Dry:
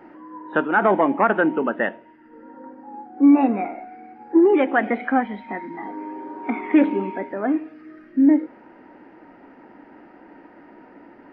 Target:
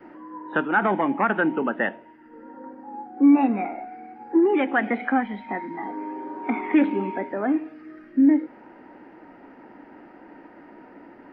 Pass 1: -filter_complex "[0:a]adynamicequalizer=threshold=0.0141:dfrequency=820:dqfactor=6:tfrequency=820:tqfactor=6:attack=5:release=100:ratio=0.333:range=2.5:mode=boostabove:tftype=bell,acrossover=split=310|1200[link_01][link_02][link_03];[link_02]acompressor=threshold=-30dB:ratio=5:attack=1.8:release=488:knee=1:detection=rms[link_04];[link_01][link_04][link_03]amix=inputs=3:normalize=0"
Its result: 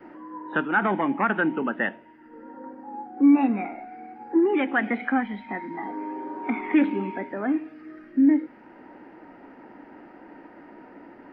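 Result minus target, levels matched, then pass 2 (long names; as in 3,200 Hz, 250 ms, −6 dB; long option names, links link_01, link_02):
downward compressor: peak gain reduction +6 dB
-filter_complex "[0:a]adynamicequalizer=threshold=0.0141:dfrequency=820:dqfactor=6:tfrequency=820:tqfactor=6:attack=5:release=100:ratio=0.333:range=2.5:mode=boostabove:tftype=bell,acrossover=split=310|1200[link_01][link_02][link_03];[link_02]acompressor=threshold=-22.5dB:ratio=5:attack=1.8:release=488:knee=1:detection=rms[link_04];[link_01][link_04][link_03]amix=inputs=3:normalize=0"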